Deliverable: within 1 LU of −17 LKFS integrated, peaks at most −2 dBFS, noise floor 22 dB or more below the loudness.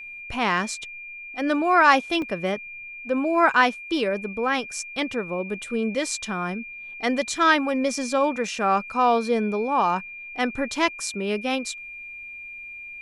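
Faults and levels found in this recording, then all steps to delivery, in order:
number of dropouts 1; longest dropout 1.9 ms; interfering tone 2,400 Hz; level of the tone −36 dBFS; integrated loudness −23.5 LKFS; sample peak −3.5 dBFS; target loudness −17.0 LKFS
→ repair the gap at 0:02.22, 1.9 ms
notch filter 2,400 Hz, Q 30
level +6.5 dB
brickwall limiter −2 dBFS

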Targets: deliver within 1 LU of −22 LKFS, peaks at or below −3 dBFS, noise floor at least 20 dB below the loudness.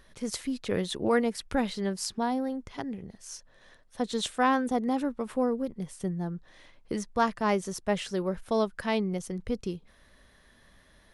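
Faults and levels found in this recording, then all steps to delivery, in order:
integrated loudness −30.5 LKFS; sample peak −12.5 dBFS; target loudness −22.0 LKFS
→ level +8.5 dB

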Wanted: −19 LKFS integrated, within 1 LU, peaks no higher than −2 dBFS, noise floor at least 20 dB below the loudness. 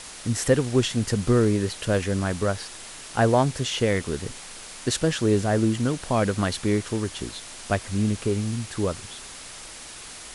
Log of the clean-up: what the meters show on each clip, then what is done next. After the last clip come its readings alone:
background noise floor −41 dBFS; target noise floor −45 dBFS; integrated loudness −24.5 LKFS; sample peak −6.0 dBFS; target loudness −19.0 LKFS
→ noise reduction from a noise print 6 dB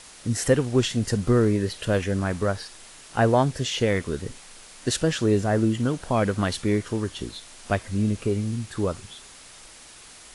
background noise floor −47 dBFS; integrated loudness −24.5 LKFS; sample peak −6.0 dBFS; target loudness −19.0 LKFS
→ level +5.5 dB
brickwall limiter −2 dBFS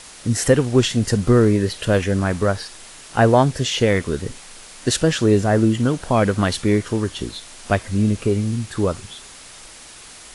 integrated loudness −19.0 LKFS; sample peak −2.0 dBFS; background noise floor −41 dBFS

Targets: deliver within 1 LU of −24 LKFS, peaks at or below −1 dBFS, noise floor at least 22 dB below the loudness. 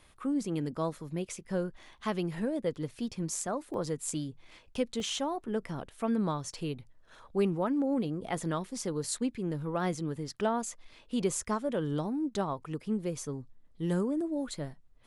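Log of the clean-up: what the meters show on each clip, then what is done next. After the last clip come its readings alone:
number of dropouts 2; longest dropout 1.4 ms; integrated loudness −34.0 LKFS; sample peak −17.5 dBFS; target loudness −24.0 LKFS
→ repair the gap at 0:03.74/0:05.00, 1.4 ms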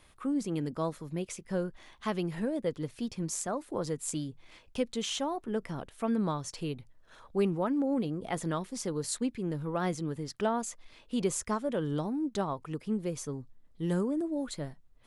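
number of dropouts 0; integrated loudness −34.0 LKFS; sample peak −17.5 dBFS; target loudness −24.0 LKFS
→ level +10 dB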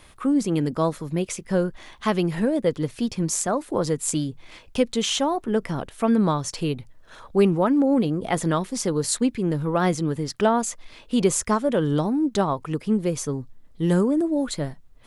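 integrated loudness −24.0 LKFS; sample peak −7.5 dBFS; background noise floor −50 dBFS

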